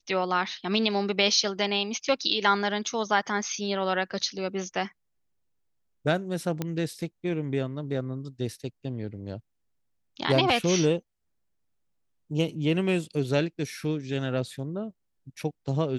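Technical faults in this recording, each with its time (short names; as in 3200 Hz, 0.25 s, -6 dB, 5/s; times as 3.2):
6.62 pop -15 dBFS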